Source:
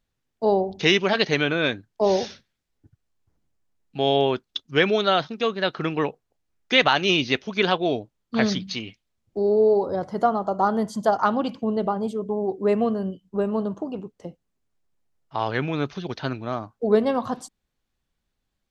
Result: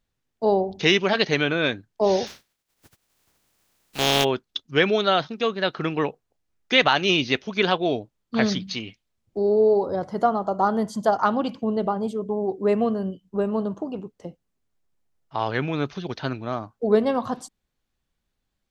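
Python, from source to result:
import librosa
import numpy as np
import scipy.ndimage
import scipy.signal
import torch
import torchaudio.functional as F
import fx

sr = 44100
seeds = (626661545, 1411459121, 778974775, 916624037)

y = fx.spec_flatten(x, sr, power=0.34, at=(2.26, 4.23), fade=0.02)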